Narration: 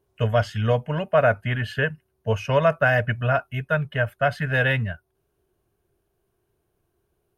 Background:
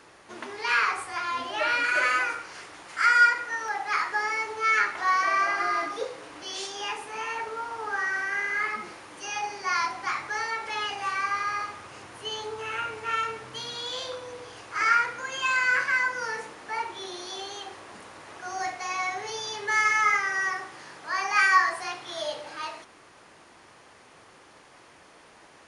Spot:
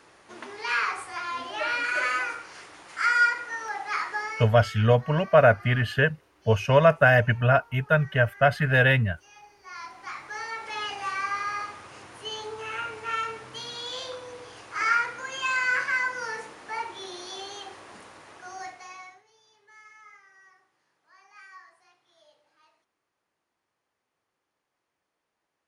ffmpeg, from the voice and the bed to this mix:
ffmpeg -i stem1.wav -i stem2.wav -filter_complex "[0:a]adelay=4200,volume=1.5dB[link_01];[1:a]volume=16dB,afade=type=out:start_time=4.12:duration=0.57:silence=0.133352,afade=type=in:start_time=9.61:duration=1.28:silence=0.11885,afade=type=out:start_time=17.97:duration=1.27:silence=0.0421697[link_02];[link_01][link_02]amix=inputs=2:normalize=0" out.wav

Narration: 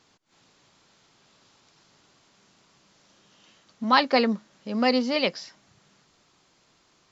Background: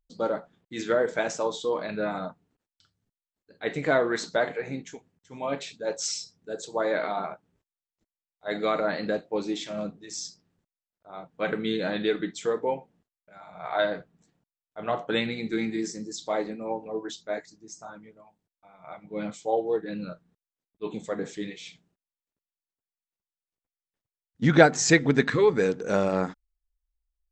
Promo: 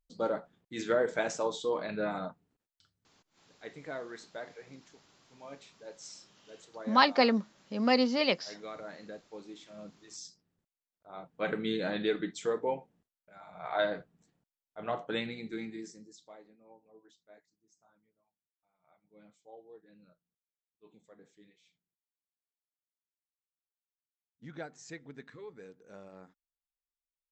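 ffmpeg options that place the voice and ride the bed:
ffmpeg -i stem1.wav -i stem2.wav -filter_complex "[0:a]adelay=3050,volume=-3.5dB[link_01];[1:a]volume=9dB,afade=type=out:start_time=2.93:duration=0.79:silence=0.211349,afade=type=in:start_time=9.67:duration=1.4:silence=0.223872,afade=type=out:start_time=14.54:duration=1.84:silence=0.0794328[link_02];[link_01][link_02]amix=inputs=2:normalize=0" out.wav

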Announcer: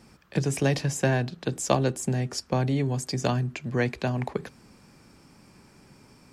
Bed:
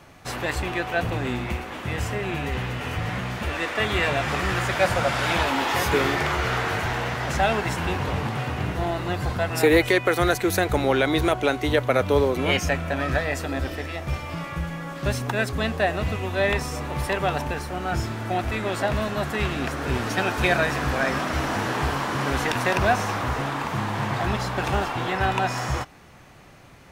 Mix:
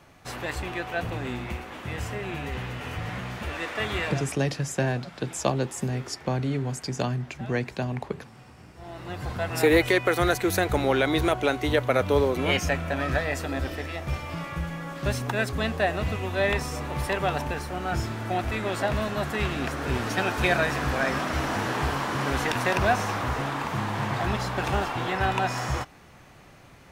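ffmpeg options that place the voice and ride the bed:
ffmpeg -i stem1.wav -i stem2.wav -filter_complex "[0:a]adelay=3750,volume=-2dB[link_01];[1:a]volume=16dB,afade=type=out:start_time=3.95:duration=0.44:silence=0.125893,afade=type=in:start_time=8.75:duration=0.92:silence=0.0891251[link_02];[link_01][link_02]amix=inputs=2:normalize=0" out.wav

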